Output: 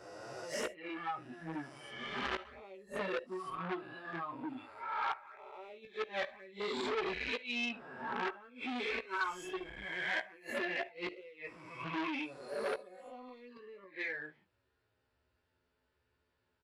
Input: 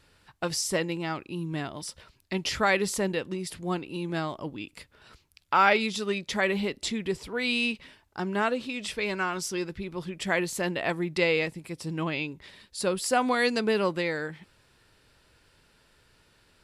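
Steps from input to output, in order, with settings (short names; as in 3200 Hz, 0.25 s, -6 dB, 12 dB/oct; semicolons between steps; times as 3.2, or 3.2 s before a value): spectral swells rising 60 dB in 2.63 s; HPF 40 Hz 12 dB/oct; spectral noise reduction 16 dB; LPF 1400 Hz 6 dB/oct; bell 190 Hz -13.5 dB 0.22 oct; envelope flanger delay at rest 11.4 ms, full sweep at -19 dBFS; in parallel at -7.5 dB: hard clip -26 dBFS, distortion -9 dB; on the sum: flipped gate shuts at -20 dBFS, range -27 dB; doubler 16 ms -5.5 dB; on a send at -17.5 dB: reverb, pre-delay 10 ms; on the sum: core saturation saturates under 1900 Hz; gain -3 dB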